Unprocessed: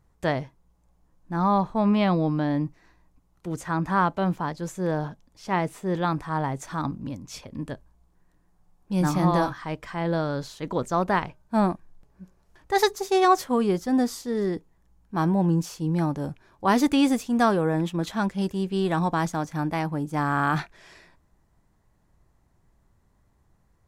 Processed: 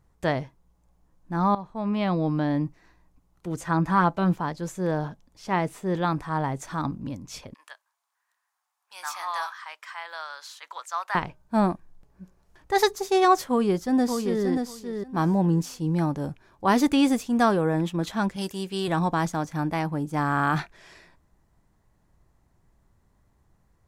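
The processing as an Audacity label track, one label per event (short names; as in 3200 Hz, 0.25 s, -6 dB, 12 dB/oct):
1.550000	2.370000	fade in, from -16 dB
3.610000	4.350000	comb 6 ms, depth 46%
7.540000	11.150000	HPF 1000 Hz 24 dB/oct
13.490000	14.450000	echo throw 0.58 s, feedback 15%, level -5.5 dB
18.360000	18.880000	tilt +2.5 dB/oct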